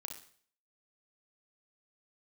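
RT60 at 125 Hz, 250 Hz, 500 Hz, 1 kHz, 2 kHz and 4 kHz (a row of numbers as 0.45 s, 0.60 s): 0.55 s, 0.50 s, 0.55 s, 0.50 s, 0.50 s, 0.50 s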